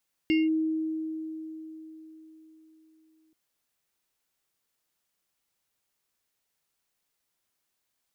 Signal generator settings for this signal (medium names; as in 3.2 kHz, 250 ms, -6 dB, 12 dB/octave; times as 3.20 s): FM tone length 3.03 s, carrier 317 Hz, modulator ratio 7.79, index 0.54, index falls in 0.19 s linear, decay 4.13 s, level -19.5 dB